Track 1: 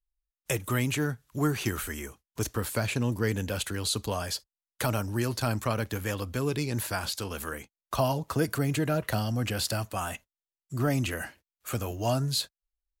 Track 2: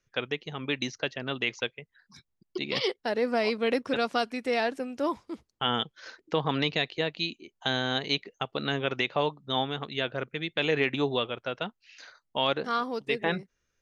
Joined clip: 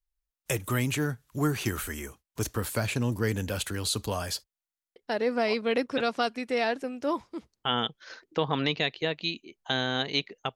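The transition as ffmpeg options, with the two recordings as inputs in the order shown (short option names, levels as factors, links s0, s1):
-filter_complex "[0:a]apad=whole_dur=10.55,atrim=end=10.55,asplit=8[s0][s1][s2][s3][s4][s5][s6][s7];[s0]atrim=end=4.682[s8];[s1]atrim=start=4.638:end=4.682[s9];[s2]atrim=start=4.638:end=4.682[s10];[s3]atrim=start=4.638:end=4.682[s11];[s4]atrim=start=4.638:end=4.682[s12];[s5]atrim=start=4.638:end=4.682[s13];[s6]atrim=start=4.638:end=4.682[s14];[s7]atrim=start=4.638:end=4.682[s15];[1:a]atrim=start=2.918:end=8.51[s16];[s8][s9]acrossfade=d=0.004:c1=hsin:c2=hsin[s17];[s17][s10]acrossfade=d=0.004:c1=hsin:c2=hsin[s18];[s18][s11]acrossfade=d=0.004:c1=hsin:c2=hsin[s19];[s19][s12]acrossfade=d=0.004:c1=hsin:c2=hsin[s20];[s20][s13]acrossfade=d=0.004:c1=hsin:c2=hsin[s21];[s21][s14]acrossfade=d=0.004:c1=hsin:c2=hsin[s22];[s22][s15]acrossfade=d=0.004:c1=hsin:c2=hsin[s23];[s23][s16]acrossfade=d=0.004:c1=hsin:c2=hsin"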